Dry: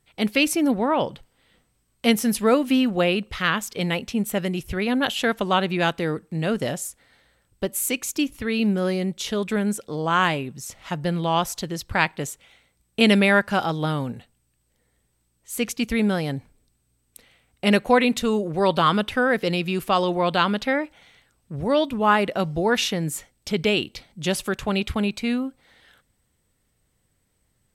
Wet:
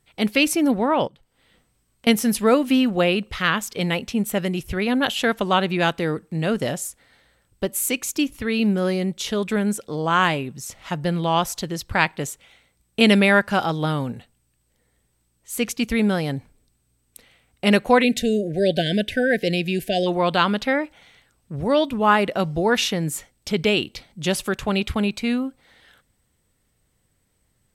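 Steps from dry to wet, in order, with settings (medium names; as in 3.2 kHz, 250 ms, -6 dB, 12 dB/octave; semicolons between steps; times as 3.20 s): 1.07–2.07 s: compression 12:1, threshold -49 dBFS, peak gain reduction 27.5 dB; 18.03–20.07 s: spectral selection erased 740–1500 Hz; trim +1.5 dB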